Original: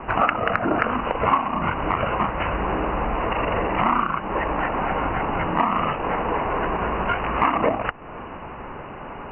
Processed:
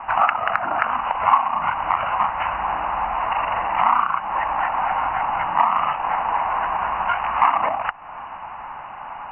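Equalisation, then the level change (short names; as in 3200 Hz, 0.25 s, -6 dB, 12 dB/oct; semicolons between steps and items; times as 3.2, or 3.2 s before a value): resonant low shelf 600 Hz -11 dB, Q 3; -1.0 dB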